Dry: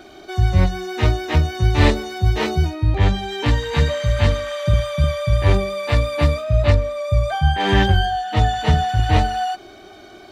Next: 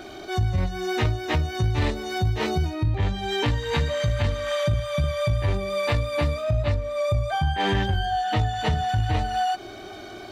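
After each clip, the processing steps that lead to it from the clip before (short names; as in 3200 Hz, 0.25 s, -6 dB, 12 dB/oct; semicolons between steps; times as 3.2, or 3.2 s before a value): bell 110 Hz +6 dB 0.22 oct; transient shaper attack -5 dB, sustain -1 dB; compressor, threshold -24 dBFS, peak gain reduction 14 dB; gain +3.5 dB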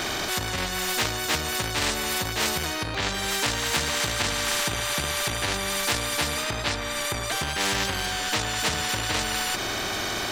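bell 1600 Hz +7 dB 0.23 oct; in parallel at -10 dB: overloaded stage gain 27.5 dB; on the sum: spectral compressor 4:1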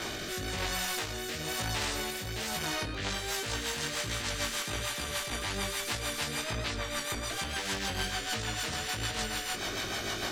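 limiter -19 dBFS, peak gain reduction 7 dB; chorus 1.2 Hz, delay 17.5 ms, depth 4.2 ms; rotary speaker horn 1 Hz, later 6.7 Hz, at 2.65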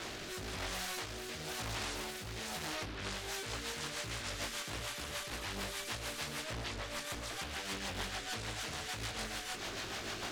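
Doppler distortion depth 0.85 ms; gain -6.5 dB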